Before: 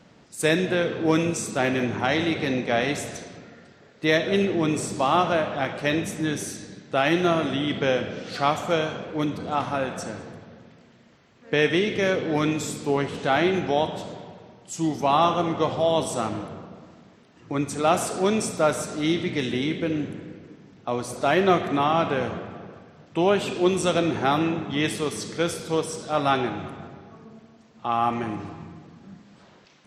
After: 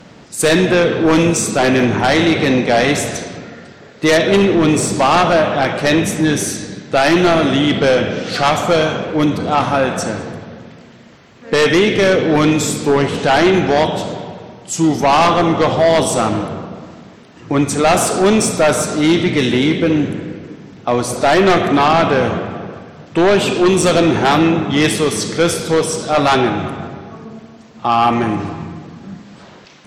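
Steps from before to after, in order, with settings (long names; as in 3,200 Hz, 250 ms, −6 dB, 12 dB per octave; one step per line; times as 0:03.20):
in parallel at −7 dB: sine wavefolder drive 12 dB, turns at −5.5 dBFS
on the sum: level +1.5 dB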